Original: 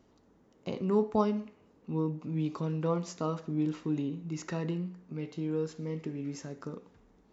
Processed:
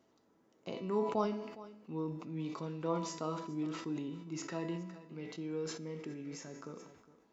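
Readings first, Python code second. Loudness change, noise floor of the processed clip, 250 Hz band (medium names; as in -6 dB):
-6.0 dB, -71 dBFS, -6.5 dB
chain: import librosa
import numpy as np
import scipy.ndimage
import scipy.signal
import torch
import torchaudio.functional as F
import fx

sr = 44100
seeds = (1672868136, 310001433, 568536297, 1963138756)

y = scipy.signal.sosfilt(scipy.signal.butter(2, 83.0, 'highpass', fs=sr, output='sos'), x)
y = fx.low_shelf(y, sr, hz=200.0, db=-9.0)
y = fx.comb_fb(y, sr, f0_hz=330.0, decay_s=0.91, harmonics='all', damping=0.0, mix_pct=80)
y = y + 10.0 ** (-17.5 / 20.0) * np.pad(y, (int(411 * sr / 1000.0), 0))[:len(y)]
y = fx.sustainer(y, sr, db_per_s=60.0)
y = y * librosa.db_to_amplitude(9.0)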